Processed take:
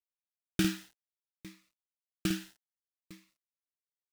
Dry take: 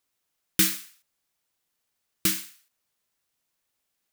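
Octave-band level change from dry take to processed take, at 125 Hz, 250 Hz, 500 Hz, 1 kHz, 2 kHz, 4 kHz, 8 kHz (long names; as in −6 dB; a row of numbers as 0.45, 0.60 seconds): +1.5, +1.5, +1.0, −4.0, −6.5, −9.0, −15.5 decibels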